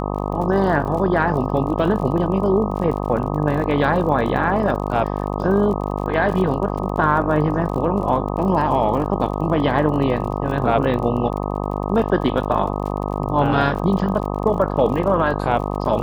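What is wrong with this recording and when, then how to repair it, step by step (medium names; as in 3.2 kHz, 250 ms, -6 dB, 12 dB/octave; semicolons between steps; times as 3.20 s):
buzz 50 Hz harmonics 25 -24 dBFS
crackle 40 per s -29 dBFS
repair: de-click; de-hum 50 Hz, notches 25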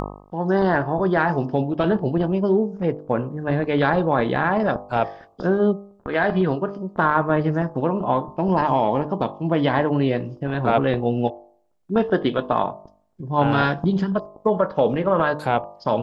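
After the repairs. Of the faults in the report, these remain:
nothing left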